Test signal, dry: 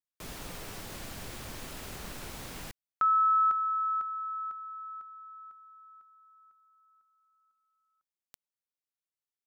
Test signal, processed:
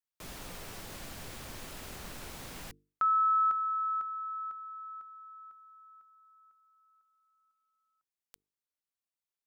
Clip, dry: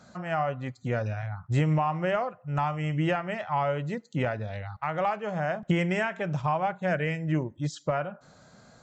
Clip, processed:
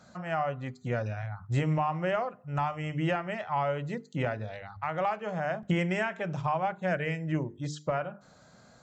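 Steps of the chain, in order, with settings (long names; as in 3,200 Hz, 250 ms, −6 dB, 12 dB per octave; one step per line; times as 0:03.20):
mains-hum notches 50/100/150/200/250/300/350/400/450 Hz
level −2 dB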